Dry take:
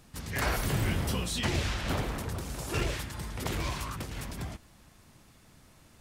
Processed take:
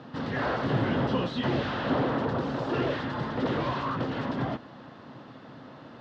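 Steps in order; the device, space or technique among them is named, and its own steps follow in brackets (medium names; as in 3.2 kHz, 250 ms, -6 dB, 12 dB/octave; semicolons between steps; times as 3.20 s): overdrive pedal into a guitar cabinet (overdrive pedal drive 28 dB, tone 1 kHz, clips at -16 dBFS; cabinet simulation 100–4200 Hz, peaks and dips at 130 Hz +9 dB, 260 Hz +9 dB, 520 Hz +4 dB, 2.3 kHz -10 dB); trim -2 dB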